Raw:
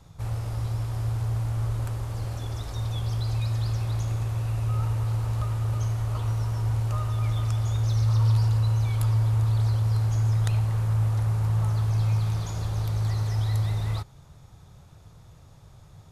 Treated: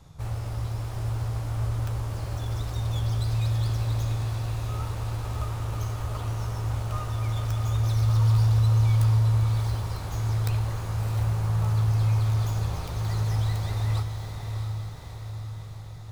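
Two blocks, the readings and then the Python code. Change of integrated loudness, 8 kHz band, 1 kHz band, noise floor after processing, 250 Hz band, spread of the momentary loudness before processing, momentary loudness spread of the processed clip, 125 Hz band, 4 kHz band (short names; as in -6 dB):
-0.5 dB, n/a, +1.5 dB, -38 dBFS, 0.0 dB, 8 LU, 12 LU, -0.5 dB, +1.5 dB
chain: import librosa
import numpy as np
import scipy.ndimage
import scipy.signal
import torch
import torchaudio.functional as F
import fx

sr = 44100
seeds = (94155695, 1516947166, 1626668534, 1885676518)

y = fx.tracing_dist(x, sr, depth_ms=0.33)
y = fx.doubler(y, sr, ms=14.0, db=-12.0)
y = fx.echo_diffused(y, sr, ms=662, feedback_pct=61, wet_db=-6.0)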